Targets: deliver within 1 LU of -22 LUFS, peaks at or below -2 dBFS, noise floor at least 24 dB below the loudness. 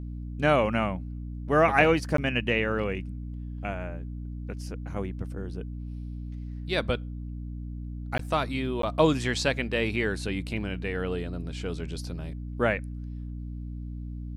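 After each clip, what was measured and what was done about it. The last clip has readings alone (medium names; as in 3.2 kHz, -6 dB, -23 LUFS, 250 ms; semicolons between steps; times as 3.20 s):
dropouts 3; longest dropout 13 ms; hum 60 Hz; highest harmonic 300 Hz; hum level -33 dBFS; loudness -29.5 LUFS; peak level -7.0 dBFS; loudness target -22.0 LUFS
-> interpolate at 2.17/8.18/8.82 s, 13 ms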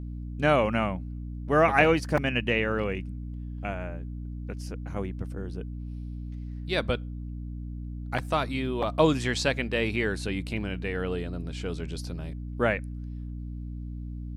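dropouts 0; hum 60 Hz; highest harmonic 300 Hz; hum level -33 dBFS
-> hum notches 60/120/180/240/300 Hz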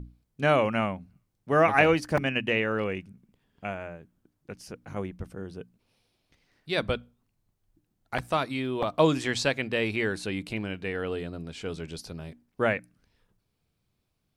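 hum not found; loudness -28.0 LUFS; peak level -7.0 dBFS; loudness target -22.0 LUFS
-> trim +6 dB; peak limiter -2 dBFS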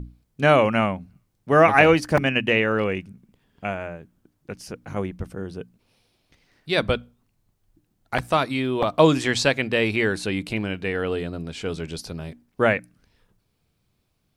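loudness -22.0 LUFS; peak level -2.0 dBFS; noise floor -71 dBFS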